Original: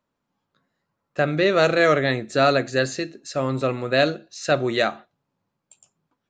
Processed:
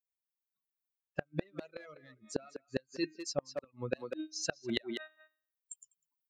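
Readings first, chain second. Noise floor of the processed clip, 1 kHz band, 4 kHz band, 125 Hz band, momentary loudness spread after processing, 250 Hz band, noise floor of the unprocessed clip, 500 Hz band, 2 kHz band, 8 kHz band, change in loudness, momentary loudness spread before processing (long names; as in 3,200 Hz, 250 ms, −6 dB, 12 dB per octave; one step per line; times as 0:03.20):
below −85 dBFS, −25.5 dB, −15.0 dB, −19.0 dB, 15 LU, −14.5 dB, −80 dBFS, −20.0 dB, −21.0 dB, −6.5 dB, −18.5 dB, 9 LU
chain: spectral dynamics exaggerated over time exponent 2
camcorder AGC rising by 5.2 dB per second
hum removal 311.5 Hz, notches 12
in parallel at −8 dB: hard clipping −19 dBFS, distortion −11 dB
on the sum: parametric band 86 Hz −10 dB 0.31 octaves
gate with flip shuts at −16 dBFS, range −41 dB
reverb reduction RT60 0.53 s
notch filter 7,800 Hz, Q 6.2
far-end echo of a speakerphone 200 ms, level −13 dB
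reversed playback
downward compressor 6 to 1, threshold −41 dBFS, peak gain reduction 16 dB
reversed playback
level +8.5 dB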